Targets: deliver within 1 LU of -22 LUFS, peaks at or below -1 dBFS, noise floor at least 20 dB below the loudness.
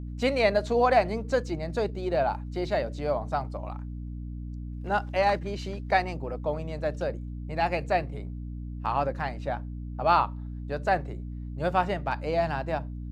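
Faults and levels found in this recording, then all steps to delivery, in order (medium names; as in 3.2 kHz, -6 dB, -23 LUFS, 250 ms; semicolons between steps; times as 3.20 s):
hum 60 Hz; highest harmonic 300 Hz; hum level -34 dBFS; loudness -29.0 LUFS; peak level -9.0 dBFS; loudness target -22.0 LUFS
-> hum notches 60/120/180/240/300 Hz; trim +7 dB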